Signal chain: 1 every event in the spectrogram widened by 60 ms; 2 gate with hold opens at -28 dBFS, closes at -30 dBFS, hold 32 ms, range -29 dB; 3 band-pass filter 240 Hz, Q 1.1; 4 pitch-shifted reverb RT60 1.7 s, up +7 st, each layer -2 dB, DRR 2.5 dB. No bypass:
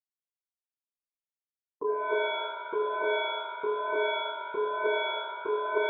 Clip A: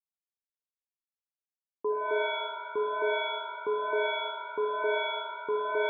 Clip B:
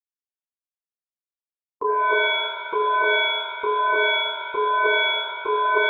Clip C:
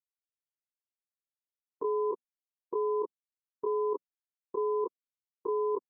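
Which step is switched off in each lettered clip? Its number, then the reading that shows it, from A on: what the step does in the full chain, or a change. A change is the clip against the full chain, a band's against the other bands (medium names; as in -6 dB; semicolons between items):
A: 1, 250 Hz band -3.5 dB; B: 3, 2 kHz band +8.5 dB; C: 4, crest factor change -4.0 dB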